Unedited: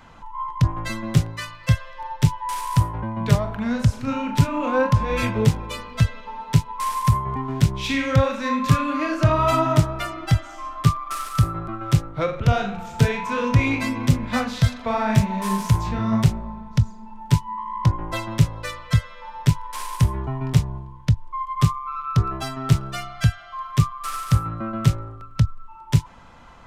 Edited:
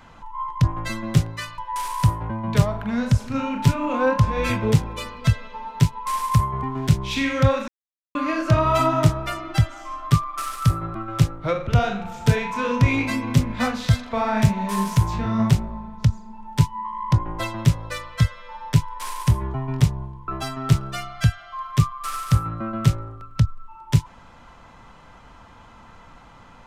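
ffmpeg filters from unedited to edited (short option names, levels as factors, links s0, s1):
-filter_complex "[0:a]asplit=5[s0][s1][s2][s3][s4];[s0]atrim=end=1.582[s5];[s1]atrim=start=2.308:end=8.41,asetpts=PTS-STARTPTS,afade=t=out:st=6.098:d=0.004:c=hsin[s6];[s2]atrim=start=8.41:end=8.88,asetpts=PTS-STARTPTS,volume=0[s7];[s3]atrim=start=8.88:end=21.012,asetpts=PTS-STARTPTS,afade=t=in:d=0.004:c=hsin[s8];[s4]atrim=start=22.278[s9];[s6][s7][s8]concat=n=3:v=0:a=1[s10];[s5][s10]acrossfade=d=0.004:c1=hsin:c2=hsin[s11];[s11][s9]acrossfade=d=0.004:c1=hsin:c2=hsin"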